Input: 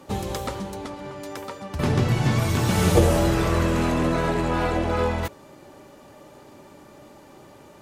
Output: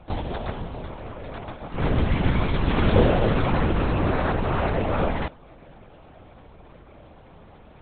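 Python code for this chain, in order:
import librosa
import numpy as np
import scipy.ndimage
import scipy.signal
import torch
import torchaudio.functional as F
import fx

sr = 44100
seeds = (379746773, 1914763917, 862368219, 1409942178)

y = fx.lpc_vocoder(x, sr, seeds[0], excitation='whisper', order=8)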